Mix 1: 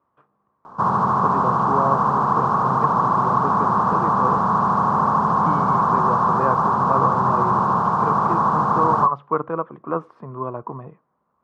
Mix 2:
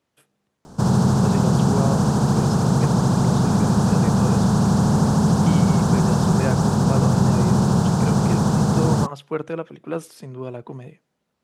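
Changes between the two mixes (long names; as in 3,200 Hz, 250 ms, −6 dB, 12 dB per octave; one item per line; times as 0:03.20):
background: add spectral tilt −4 dB per octave
master: remove low-pass with resonance 1,100 Hz, resonance Q 7.5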